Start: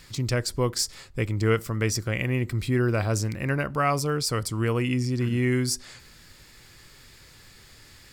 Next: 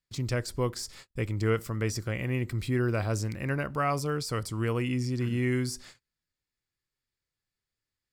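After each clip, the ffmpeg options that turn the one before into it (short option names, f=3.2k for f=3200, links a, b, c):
-filter_complex "[0:a]agate=range=-35dB:threshold=-42dB:ratio=16:detection=peak,acrossover=split=1500[a][b];[b]alimiter=limit=-23.5dB:level=0:latency=1:release=11[c];[a][c]amix=inputs=2:normalize=0,volume=-4dB"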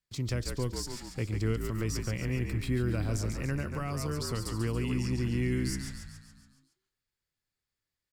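-filter_complex "[0:a]asplit=2[a][b];[b]asplit=7[c][d][e][f][g][h][i];[c]adelay=140,afreqshift=-56,volume=-7dB[j];[d]adelay=280,afreqshift=-112,volume=-12dB[k];[e]adelay=420,afreqshift=-168,volume=-17.1dB[l];[f]adelay=560,afreqshift=-224,volume=-22.1dB[m];[g]adelay=700,afreqshift=-280,volume=-27.1dB[n];[h]adelay=840,afreqshift=-336,volume=-32.2dB[o];[i]adelay=980,afreqshift=-392,volume=-37.2dB[p];[j][k][l][m][n][o][p]amix=inputs=7:normalize=0[q];[a][q]amix=inputs=2:normalize=0,acrossover=split=330|3000[r][s][t];[s]acompressor=threshold=-37dB:ratio=6[u];[r][u][t]amix=inputs=3:normalize=0,volume=-1.5dB"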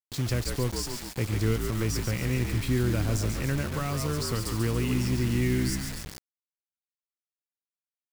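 -af "acrusher=bits=6:mix=0:aa=0.000001,volume=4dB"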